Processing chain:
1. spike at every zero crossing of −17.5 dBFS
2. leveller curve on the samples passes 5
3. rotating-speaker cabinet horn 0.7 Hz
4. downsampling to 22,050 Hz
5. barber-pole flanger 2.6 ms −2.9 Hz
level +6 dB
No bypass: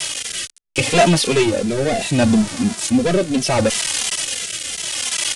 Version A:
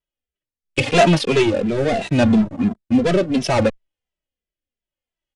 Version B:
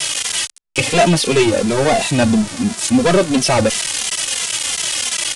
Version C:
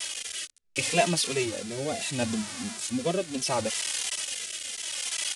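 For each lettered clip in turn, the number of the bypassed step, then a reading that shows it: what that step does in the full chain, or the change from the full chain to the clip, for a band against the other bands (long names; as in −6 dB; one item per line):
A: 1, 8 kHz band −16.0 dB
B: 3, change in crest factor −2.0 dB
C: 2, change in crest factor +3.5 dB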